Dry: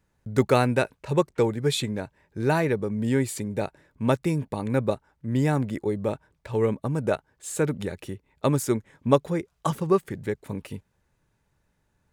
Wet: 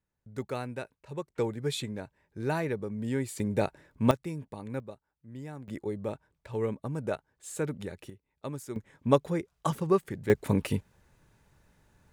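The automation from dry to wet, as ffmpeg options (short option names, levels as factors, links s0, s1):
-af "asetnsamples=n=441:p=0,asendcmd='1.35 volume volume -7.5dB;3.4 volume volume 0.5dB;4.11 volume volume -11.5dB;4.8 volume volume -19dB;5.68 volume volume -7.5dB;8.1 volume volume -15dB;8.76 volume volume -3.5dB;10.3 volume volume 7dB',volume=0.178"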